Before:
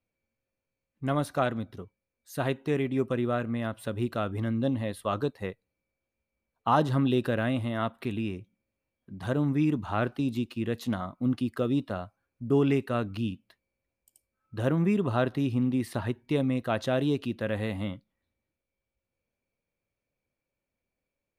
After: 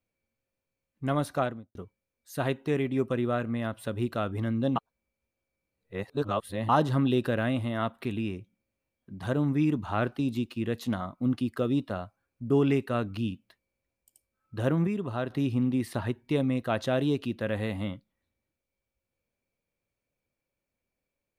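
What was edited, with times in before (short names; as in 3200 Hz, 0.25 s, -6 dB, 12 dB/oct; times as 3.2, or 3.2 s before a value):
1.33–1.75 studio fade out
4.76–6.69 reverse
14.87–15.3 gain -5.5 dB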